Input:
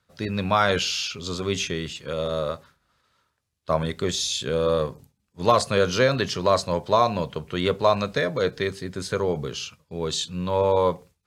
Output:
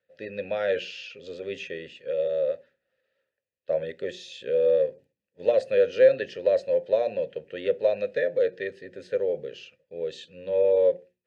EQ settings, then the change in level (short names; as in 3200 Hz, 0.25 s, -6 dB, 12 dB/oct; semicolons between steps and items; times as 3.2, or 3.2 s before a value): vowel filter e; low shelf 370 Hz +6.5 dB; notches 60/120/180/240/300/360 Hz; +3.5 dB